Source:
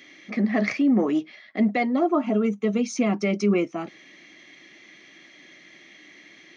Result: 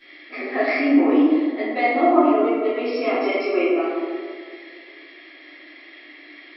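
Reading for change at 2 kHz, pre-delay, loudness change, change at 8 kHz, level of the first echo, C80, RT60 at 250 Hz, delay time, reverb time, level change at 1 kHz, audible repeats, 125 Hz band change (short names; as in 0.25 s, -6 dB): +6.0 dB, 3 ms, +4.0 dB, n/a, none, 0.5 dB, 2.2 s, none, 2.0 s, +8.5 dB, none, under -20 dB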